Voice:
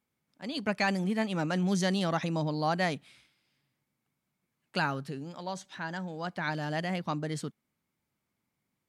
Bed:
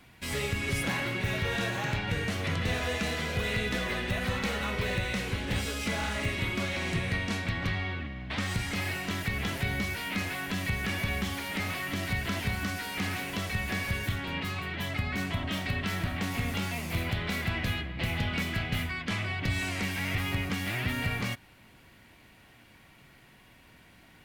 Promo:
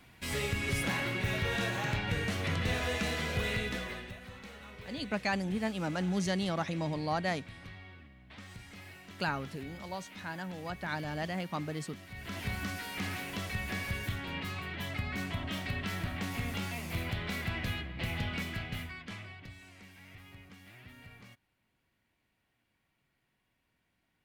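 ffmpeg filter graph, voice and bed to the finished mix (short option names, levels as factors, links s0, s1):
-filter_complex "[0:a]adelay=4450,volume=0.668[s0];[1:a]volume=3.55,afade=t=out:st=3.44:d=0.74:silence=0.16788,afade=t=in:st=12.11:d=0.41:silence=0.223872,afade=t=out:st=18.23:d=1.34:silence=0.133352[s1];[s0][s1]amix=inputs=2:normalize=0"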